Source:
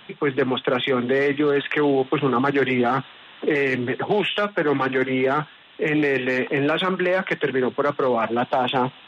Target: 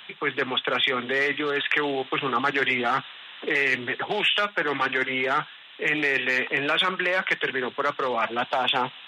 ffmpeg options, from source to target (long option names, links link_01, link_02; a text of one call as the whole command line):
ffmpeg -i in.wav -af "tiltshelf=frequency=810:gain=-8.5,volume=-3.5dB" out.wav